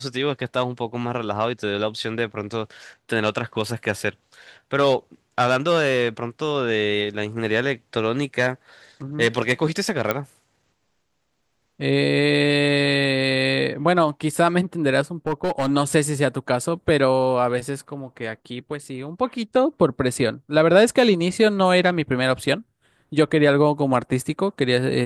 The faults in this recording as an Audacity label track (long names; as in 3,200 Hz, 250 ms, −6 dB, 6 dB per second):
10.110000	10.110000	click −7 dBFS
15.270000	15.710000	clipping −17.5 dBFS